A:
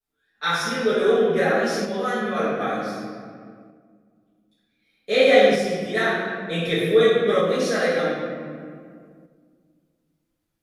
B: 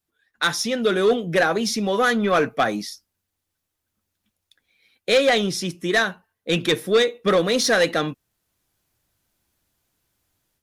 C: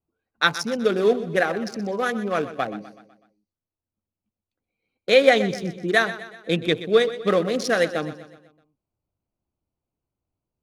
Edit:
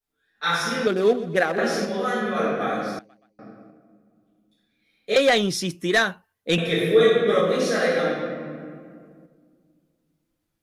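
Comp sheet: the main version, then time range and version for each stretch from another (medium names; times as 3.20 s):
A
0.87–1.58 s: from C
2.99–3.39 s: from C
5.16–6.58 s: from B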